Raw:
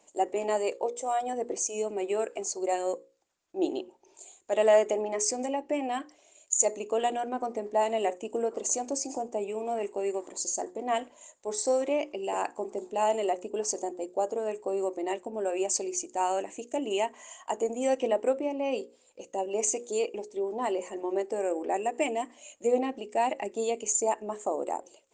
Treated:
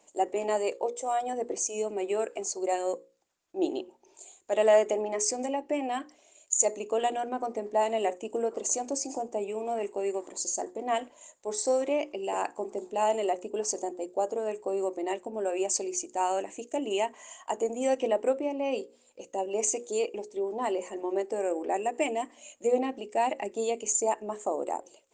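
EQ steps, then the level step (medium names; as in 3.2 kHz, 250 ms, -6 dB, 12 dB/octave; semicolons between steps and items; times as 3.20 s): hum notches 60/120/180/240 Hz; 0.0 dB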